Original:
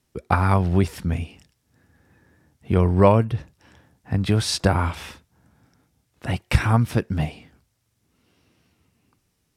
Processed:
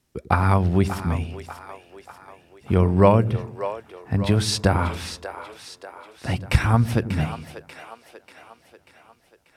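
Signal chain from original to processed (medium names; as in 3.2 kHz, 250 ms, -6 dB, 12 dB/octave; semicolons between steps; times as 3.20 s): two-band feedback delay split 390 Hz, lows 95 ms, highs 589 ms, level -11 dB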